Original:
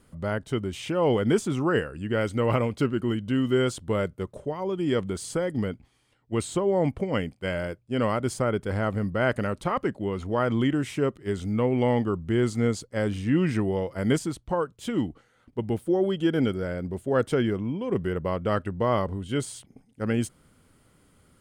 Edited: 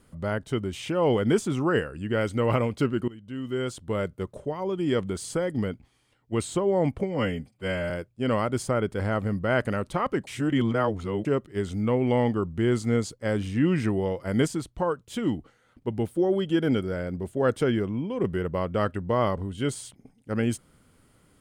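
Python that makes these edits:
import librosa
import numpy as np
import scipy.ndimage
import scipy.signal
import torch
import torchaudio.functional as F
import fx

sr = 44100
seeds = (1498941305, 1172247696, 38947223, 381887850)

y = fx.edit(x, sr, fx.fade_in_from(start_s=3.08, length_s=1.15, floor_db=-20.5),
    fx.stretch_span(start_s=7.03, length_s=0.58, factor=1.5),
    fx.reverse_span(start_s=9.98, length_s=0.98), tone=tone)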